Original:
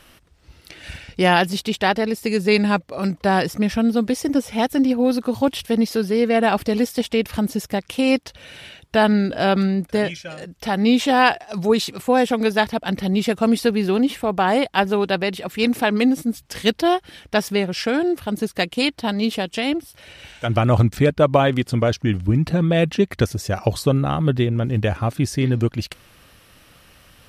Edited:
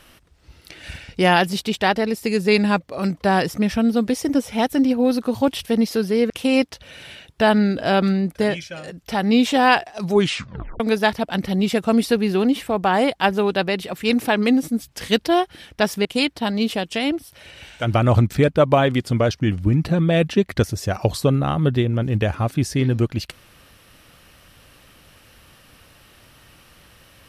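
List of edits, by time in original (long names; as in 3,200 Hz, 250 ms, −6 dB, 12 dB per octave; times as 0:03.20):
0:06.30–0:07.84: remove
0:11.66: tape stop 0.68 s
0:17.59–0:18.67: remove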